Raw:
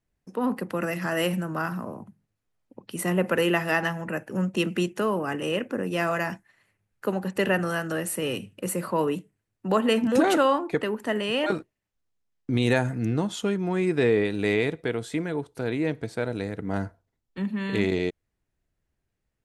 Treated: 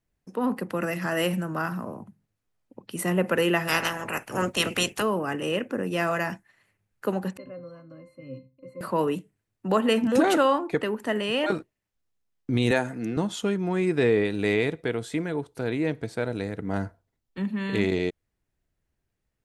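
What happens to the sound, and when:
0:03.67–0:05.01: ceiling on every frequency bin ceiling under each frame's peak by 22 dB
0:07.37–0:08.81: resonances in every octave C, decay 0.22 s
0:12.71–0:13.17: high-pass filter 220 Hz

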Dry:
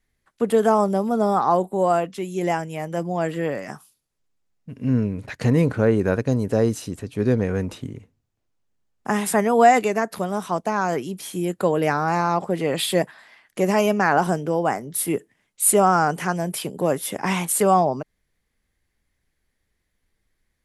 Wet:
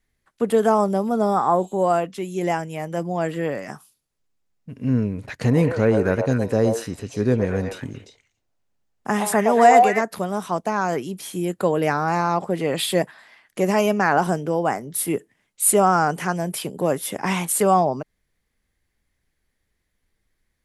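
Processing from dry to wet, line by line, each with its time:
0:01.38–0:01.74: healed spectral selection 2,300–8,100 Hz
0:05.38–0:10.01: echo through a band-pass that steps 116 ms, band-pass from 720 Hz, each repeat 1.4 octaves, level 0 dB

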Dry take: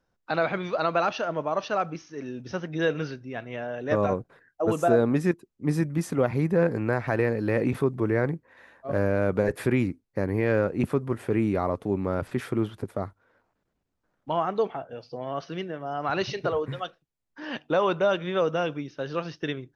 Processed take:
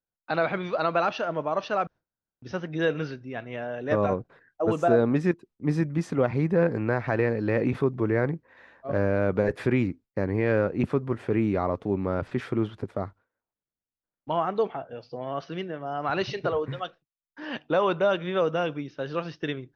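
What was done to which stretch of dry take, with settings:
0:01.87–0:02.42: fill with room tone
whole clip: low-pass filter 5,100 Hz 12 dB per octave; noise gate with hold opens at −51 dBFS

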